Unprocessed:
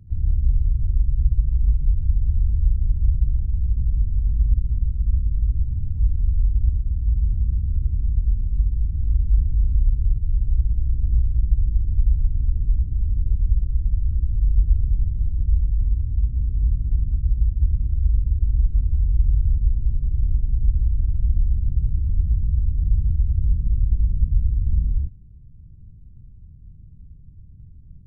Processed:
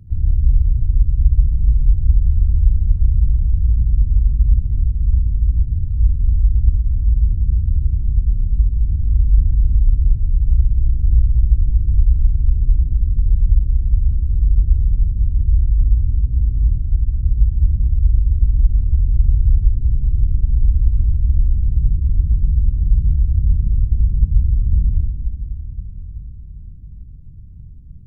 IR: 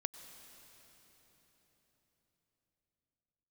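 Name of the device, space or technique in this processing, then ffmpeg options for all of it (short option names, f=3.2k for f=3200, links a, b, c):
cathedral: -filter_complex "[0:a]asettb=1/sr,asplit=3[a][b][c];[a]atrim=end=16.784[d];[b]atrim=start=16.78:end=17.23,asetpts=PTS-STARTPTS,afade=t=in:d=0.004:c=qsin,afade=t=out:st=0.446:d=0.004:c=qsin,equalizer=f=220:t=o:w=2.4:g=-6[e];[c]atrim=start=17.226[f];[d][e]acrossfade=d=0.004:c1=hsin:c2=qsin[g];[g][f]acrossfade=d=0.004:c1=qsin:c2=hsin[h];[1:a]atrim=start_sample=2205[i];[h][i]afir=irnorm=-1:irlink=0,volume=6dB"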